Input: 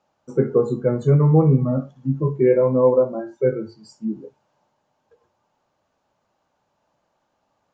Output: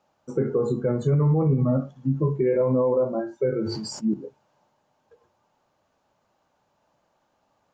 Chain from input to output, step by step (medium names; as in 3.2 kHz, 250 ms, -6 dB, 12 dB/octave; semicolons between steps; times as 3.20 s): peak limiter -15.5 dBFS, peak gain reduction 10.5 dB; 3.59–4.14 s: decay stretcher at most 33 dB/s; trim +1 dB